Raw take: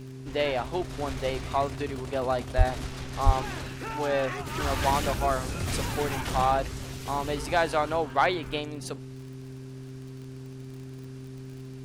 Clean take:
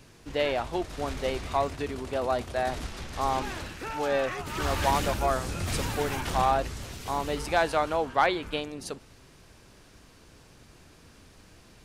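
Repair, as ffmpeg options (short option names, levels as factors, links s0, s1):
-filter_complex "[0:a]adeclick=t=4,bandreject=f=130.9:t=h:w=4,bandreject=f=261.8:t=h:w=4,bandreject=f=392.7:t=h:w=4,asplit=3[s0][s1][s2];[s0]afade=t=out:st=2.57:d=0.02[s3];[s1]highpass=f=140:w=0.5412,highpass=f=140:w=1.3066,afade=t=in:st=2.57:d=0.02,afade=t=out:st=2.69:d=0.02[s4];[s2]afade=t=in:st=2.69:d=0.02[s5];[s3][s4][s5]amix=inputs=3:normalize=0,asplit=3[s6][s7][s8];[s6]afade=t=out:st=3.25:d=0.02[s9];[s7]highpass=f=140:w=0.5412,highpass=f=140:w=1.3066,afade=t=in:st=3.25:d=0.02,afade=t=out:st=3.37:d=0.02[s10];[s8]afade=t=in:st=3.37:d=0.02[s11];[s9][s10][s11]amix=inputs=3:normalize=0"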